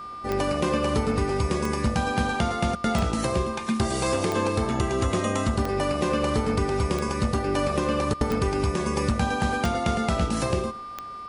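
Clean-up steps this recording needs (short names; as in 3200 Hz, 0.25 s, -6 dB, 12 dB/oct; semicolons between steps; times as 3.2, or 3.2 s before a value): de-click; de-hum 381.9 Hz, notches 14; notch 1200 Hz, Q 30; inverse comb 0.109 s -20 dB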